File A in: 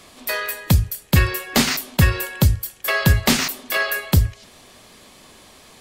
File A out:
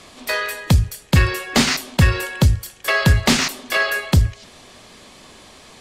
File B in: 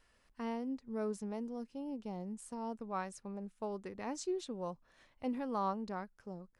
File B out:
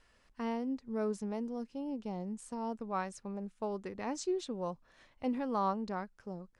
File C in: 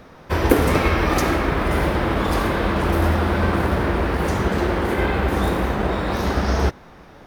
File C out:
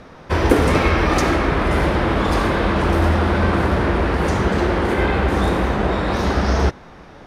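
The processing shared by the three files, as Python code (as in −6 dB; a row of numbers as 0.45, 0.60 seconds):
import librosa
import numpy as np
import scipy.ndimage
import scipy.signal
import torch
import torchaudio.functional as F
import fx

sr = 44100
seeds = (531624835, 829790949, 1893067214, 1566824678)

p1 = scipy.signal.sosfilt(scipy.signal.butter(2, 8800.0, 'lowpass', fs=sr, output='sos'), x)
p2 = 10.0 ** (-15.0 / 20.0) * np.tanh(p1 / 10.0 ** (-15.0 / 20.0))
p3 = p1 + (p2 * librosa.db_to_amplitude(-3.0))
y = p3 * librosa.db_to_amplitude(-1.5)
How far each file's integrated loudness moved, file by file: +1.0, +3.0, +2.0 LU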